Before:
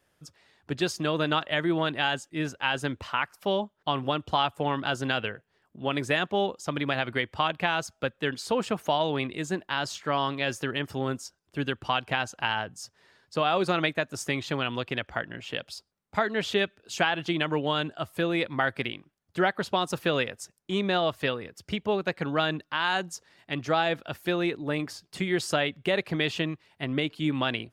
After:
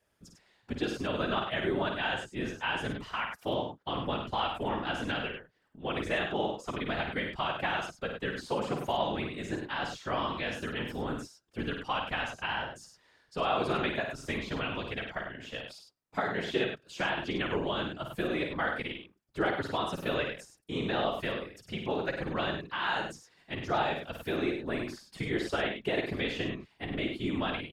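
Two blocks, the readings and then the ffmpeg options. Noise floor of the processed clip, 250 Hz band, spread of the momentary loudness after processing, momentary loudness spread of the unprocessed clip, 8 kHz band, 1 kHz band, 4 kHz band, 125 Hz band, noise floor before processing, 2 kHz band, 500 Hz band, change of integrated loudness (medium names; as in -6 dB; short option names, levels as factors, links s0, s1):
-69 dBFS, -4.5 dB, 8 LU, 9 LU, -10.5 dB, -4.5 dB, -6.0 dB, -5.5 dB, -73 dBFS, -4.5 dB, -4.5 dB, -4.5 dB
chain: -filter_complex "[0:a]afftfilt=real='hypot(re,im)*cos(2*PI*random(0))':imag='hypot(re,im)*sin(2*PI*random(1))':win_size=512:overlap=0.75,acrossover=split=3800[s0][s1];[s1]acompressor=threshold=0.00316:ratio=4:attack=1:release=60[s2];[s0][s2]amix=inputs=2:normalize=0,aecho=1:1:52.48|99.13:0.501|0.447"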